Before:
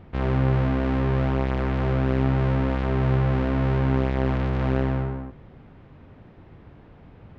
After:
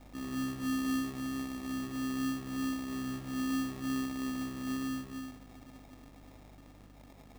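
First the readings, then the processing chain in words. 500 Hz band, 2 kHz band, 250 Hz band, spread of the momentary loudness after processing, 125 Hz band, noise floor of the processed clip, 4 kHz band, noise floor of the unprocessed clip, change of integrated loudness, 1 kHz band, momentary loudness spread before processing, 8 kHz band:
-22.5 dB, -9.0 dB, -7.0 dB, 20 LU, -25.0 dB, -55 dBFS, -2.0 dB, -49 dBFS, -12.5 dB, -13.0 dB, 4 LU, no reading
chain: zero-crossing glitches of -21.5 dBFS; in parallel at +2 dB: peak limiter -23 dBFS, peak gain reduction 11 dB; on the sum: vowel filter i; hum 50 Hz, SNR 20 dB; echo that smears into a reverb 455 ms, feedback 59%, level -14 dB; sample-rate reducer 1.5 kHz, jitter 0%; trim -7 dB

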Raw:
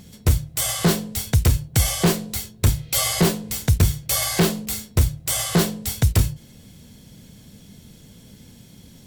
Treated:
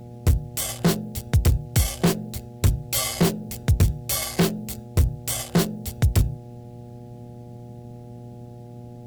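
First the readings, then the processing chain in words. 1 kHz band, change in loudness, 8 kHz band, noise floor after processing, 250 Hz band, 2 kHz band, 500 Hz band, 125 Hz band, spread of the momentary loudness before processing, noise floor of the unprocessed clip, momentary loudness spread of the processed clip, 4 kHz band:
-3.5 dB, -2.5 dB, -5.0 dB, -41 dBFS, -1.5 dB, -4.5 dB, -2.0 dB, -1.5 dB, 5 LU, -48 dBFS, 19 LU, -5.0 dB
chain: local Wiener filter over 41 samples; mains buzz 120 Hz, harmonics 7, -39 dBFS -6 dB/octave; bit crusher 10-bit; trim -1.5 dB

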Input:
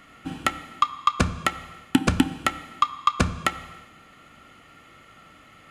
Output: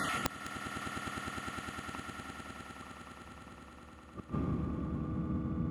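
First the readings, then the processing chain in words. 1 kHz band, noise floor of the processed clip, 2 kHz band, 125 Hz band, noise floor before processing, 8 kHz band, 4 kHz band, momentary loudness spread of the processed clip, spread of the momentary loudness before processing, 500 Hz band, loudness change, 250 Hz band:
-16.0 dB, -54 dBFS, -11.5 dB, -7.5 dB, -52 dBFS, -11.5 dB, -14.5 dB, 14 LU, 9 LU, -10.5 dB, -14.5 dB, -10.5 dB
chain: random holes in the spectrogram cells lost 25%; low-pass sweep 11 kHz -> 180 Hz, 0.13–3.82 s; one-sided clip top -24 dBFS, bottom -9 dBFS; Schroeder reverb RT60 3.4 s, combs from 26 ms, DRR 4.5 dB; reverse; compression 5:1, threshold -36 dBFS, peak gain reduction 18.5 dB; reverse; inverted gate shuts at -38 dBFS, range -36 dB; high-pass 68 Hz; on a send: echo with a slow build-up 102 ms, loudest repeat 8, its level -10.5 dB; on the sum: integer overflow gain 36.5 dB; trim +17.5 dB

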